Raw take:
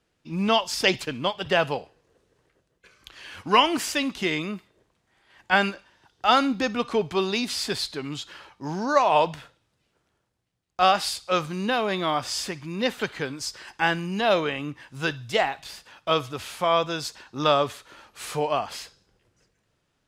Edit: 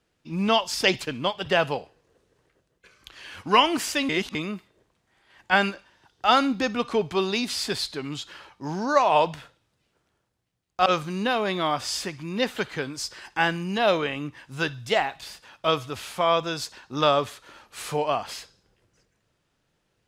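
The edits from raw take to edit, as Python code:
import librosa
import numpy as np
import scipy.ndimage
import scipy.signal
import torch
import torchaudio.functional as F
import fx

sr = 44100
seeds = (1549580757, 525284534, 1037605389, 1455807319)

y = fx.edit(x, sr, fx.reverse_span(start_s=4.09, length_s=0.26),
    fx.cut(start_s=10.86, length_s=0.43), tone=tone)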